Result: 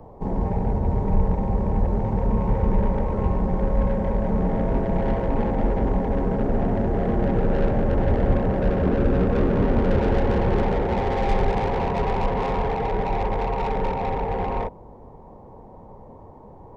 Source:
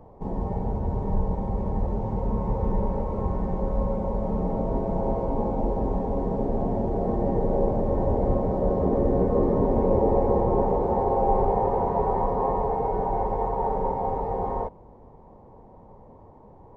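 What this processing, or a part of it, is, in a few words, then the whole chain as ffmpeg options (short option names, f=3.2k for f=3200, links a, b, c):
one-band saturation: -filter_complex "[0:a]acrossover=split=260|2000[a][b][c];[b]asoftclip=type=tanh:threshold=-29dB[d];[a][d][c]amix=inputs=3:normalize=0,volume=5dB"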